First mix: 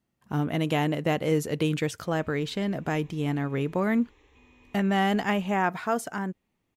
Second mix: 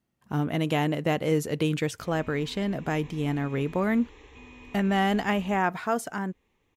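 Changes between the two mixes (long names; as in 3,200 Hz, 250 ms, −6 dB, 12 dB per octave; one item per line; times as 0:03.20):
background +8.5 dB
reverb: on, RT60 0.70 s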